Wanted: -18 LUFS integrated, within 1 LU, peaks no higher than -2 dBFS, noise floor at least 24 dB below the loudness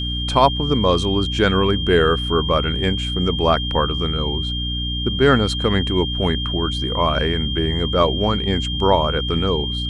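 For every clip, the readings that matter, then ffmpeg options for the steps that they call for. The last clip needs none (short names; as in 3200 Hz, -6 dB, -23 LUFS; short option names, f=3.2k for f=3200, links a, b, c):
hum 60 Hz; harmonics up to 300 Hz; hum level -23 dBFS; steady tone 3200 Hz; tone level -25 dBFS; loudness -19.0 LUFS; peak -1.5 dBFS; loudness target -18.0 LUFS
-> -af "bandreject=f=60:t=h:w=4,bandreject=f=120:t=h:w=4,bandreject=f=180:t=h:w=4,bandreject=f=240:t=h:w=4,bandreject=f=300:t=h:w=4"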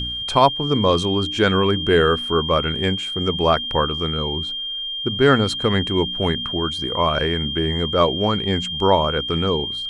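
hum none; steady tone 3200 Hz; tone level -25 dBFS
-> -af "bandreject=f=3.2k:w=30"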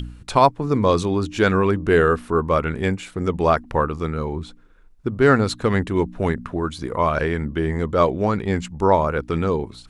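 steady tone none; loudness -21.0 LUFS; peak -2.0 dBFS; loudness target -18.0 LUFS
-> -af "volume=3dB,alimiter=limit=-2dB:level=0:latency=1"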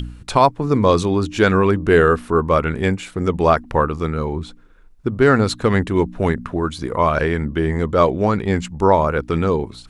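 loudness -18.0 LUFS; peak -2.0 dBFS; noise floor -45 dBFS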